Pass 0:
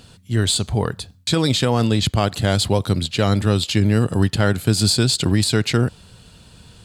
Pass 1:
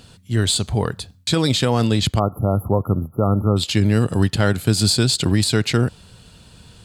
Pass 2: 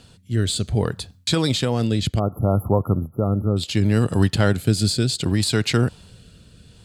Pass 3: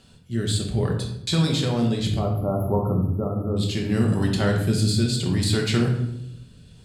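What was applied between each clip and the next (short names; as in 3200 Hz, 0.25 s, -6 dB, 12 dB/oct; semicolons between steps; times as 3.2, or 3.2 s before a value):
spectral delete 2.19–3.57, 1400–11000 Hz
rotary speaker horn 0.65 Hz
shoebox room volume 220 m³, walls mixed, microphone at 1.1 m; gain -6 dB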